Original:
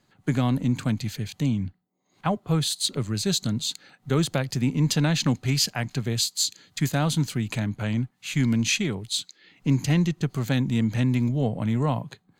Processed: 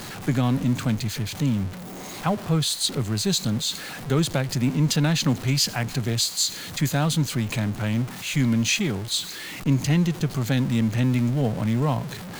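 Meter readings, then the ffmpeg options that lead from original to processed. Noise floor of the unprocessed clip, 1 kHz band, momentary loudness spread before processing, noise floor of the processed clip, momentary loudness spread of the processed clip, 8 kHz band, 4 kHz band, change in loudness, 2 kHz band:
−68 dBFS, +1.5 dB, 7 LU, −36 dBFS, 6 LU, +2.0 dB, +2.0 dB, +1.5 dB, +2.0 dB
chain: -af "aeval=exprs='val(0)+0.5*0.0299*sgn(val(0))':channel_layout=same"

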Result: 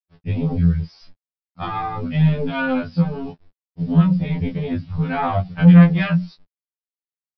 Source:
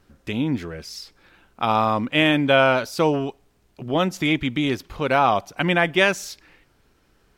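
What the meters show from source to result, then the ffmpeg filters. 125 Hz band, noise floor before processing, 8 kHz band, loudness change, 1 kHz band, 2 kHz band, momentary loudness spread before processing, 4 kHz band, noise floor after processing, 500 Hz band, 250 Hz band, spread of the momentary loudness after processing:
+12.5 dB, −62 dBFS, below −25 dB, +2.5 dB, −5.0 dB, −7.0 dB, 16 LU, −12.0 dB, below −85 dBFS, −7.0 dB, +6.0 dB, 17 LU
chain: -filter_complex "[0:a]bandreject=frequency=60:width_type=h:width=6,bandreject=frequency=120:width_type=h:width=6,bandreject=frequency=180:width_type=h:width=6,bandreject=frequency=240:width_type=h:width=6,bandreject=frequency=300:width_type=h:width=6,afftfilt=real='re*gte(hypot(re,im),0.0158)':imag='im*gte(hypot(re,im),0.0158)':win_size=1024:overlap=0.75,agate=range=-28dB:threshold=-48dB:ratio=16:detection=peak,lowpass=frequency=1400:poles=1,lowshelf=frequency=240:width_type=q:width=3:gain=14,asplit=2[link_01][link_02];[link_02]alimiter=limit=-10.5dB:level=0:latency=1:release=349,volume=3dB[link_03];[link_01][link_03]amix=inputs=2:normalize=0,asoftclip=type=tanh:threshold=-4.5dB,aresample=11025,acrusher=bits=7:mix=0:aa=0.000001,aresample=44100,flanger=delay=18:depth=4:speed=0.79,afftfilt=real='re*2*eq(mod(b,4),0)':imag='im*2*eq(mod(b,4),0)':win_size=2048:overlap=0.75"

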